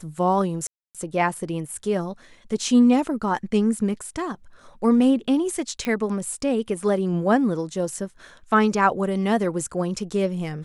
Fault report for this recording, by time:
0:00.67–0:00.95: drop-out 277 ms
0:05.85: click −14 dBFS

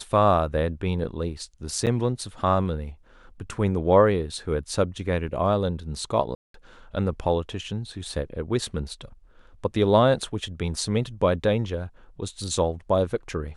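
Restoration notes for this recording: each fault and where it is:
0:01.86–0:01.87: drop-out 8.1 ms
0:06.35–0:06.54: drop-out 193 ms

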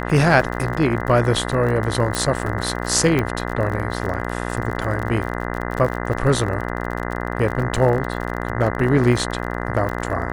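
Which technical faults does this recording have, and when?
mains buzz 60 Hz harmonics 34 −26 dBFS
surface crackle 46 per second −26 dBFS
0:02.15: click
0:03.19: click −8 dBFS

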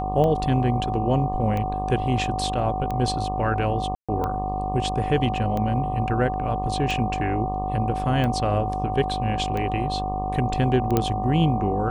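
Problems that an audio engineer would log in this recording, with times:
mains buzz 50 Hz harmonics 24 −30 dBFS
scratch tick 45 rpm −16 dBFS
whistle 750 Hz −27 dBFS
0:03.95–0:04.09: drop-out 136 ms
0:10.97: click −7 dBFS

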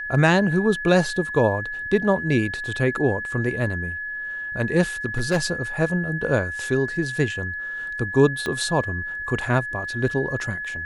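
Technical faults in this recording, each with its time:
whistle 1,700 Hz −28 dBFS
0:05.06–0:05.52: clipping −15.5 dBFS
0:08.46: click −14 dBFS

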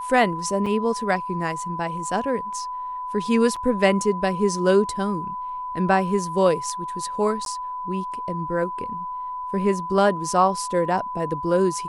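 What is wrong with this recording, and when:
whistle 1,000 Hz −28 dBFS
0:00.66: drop-out 4.7 ms
0:03.56–0:03.57: drop-out 5.3 ms
0:07.45–0:07.46: drop-out 12 ms

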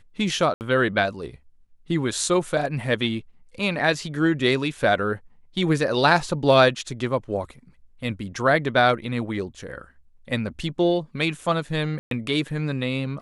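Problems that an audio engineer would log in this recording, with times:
0:00.54–0:00.61: drop-out 69 ms
0:11.99–0:12.11: drop-out 122 ms

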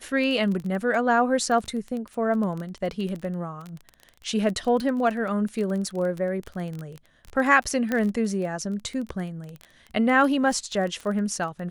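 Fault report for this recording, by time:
surface crackle 17 per second −29 dBFS
0:07.92: click −13 dBFS

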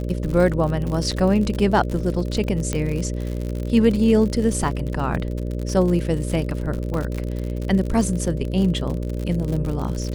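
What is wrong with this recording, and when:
mains buzz 60 Hz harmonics 10 −26 dBFS
surface crackle 64 per second −26 dBFS
0:01.11–0:01.12: drop-out 5.8 ms
0:02.73: click −10 dBFS
0:04.71: drop-out 2.5 ms
0:06.94: drop-out 2.9 ms

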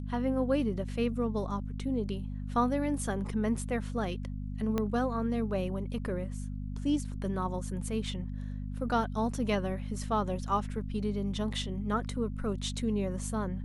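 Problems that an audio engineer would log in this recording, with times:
mains hum 50 Hz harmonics 5 −37 dBFS
0:04.78: click −17 dBFS

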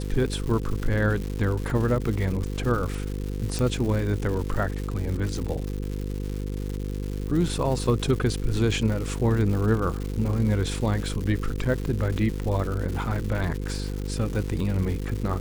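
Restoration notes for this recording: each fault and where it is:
mains buzz 50 Hz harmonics 10 −30 dBFS
surface crackle 270 per second −31 dBFS
0:03.59: click

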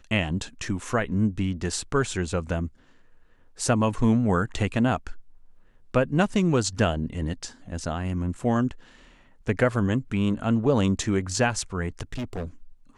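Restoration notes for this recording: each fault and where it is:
0:08.39: drop-out 3.5 ms
0:12.12–0:12.45: clipping −27.5 dBFS

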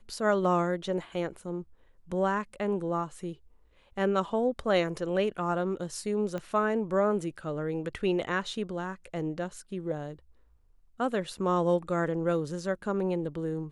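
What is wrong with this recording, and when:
0:06.38: click −23 dBFS

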